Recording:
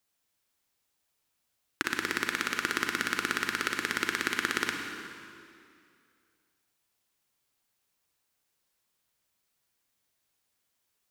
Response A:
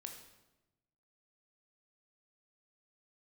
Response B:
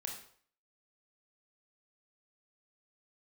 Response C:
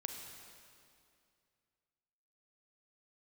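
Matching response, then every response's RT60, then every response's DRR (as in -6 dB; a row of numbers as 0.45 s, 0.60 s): C; 1.0 s, 0.55 s, 2.4 s; 3.5 dB, 0.5 dB, 3.5 dB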